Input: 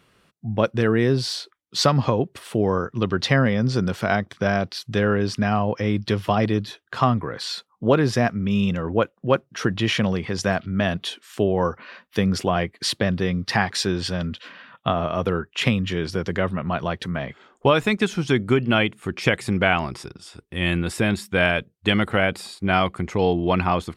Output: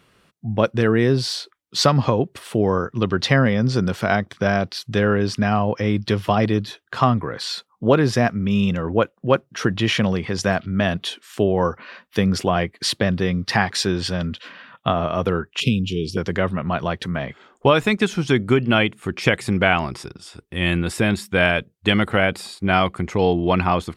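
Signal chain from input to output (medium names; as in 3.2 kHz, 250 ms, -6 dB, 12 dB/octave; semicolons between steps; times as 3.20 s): 15.60–16.17 s: Chebyshev band-stop 450–2600 Hz, order 4; trim +2 dB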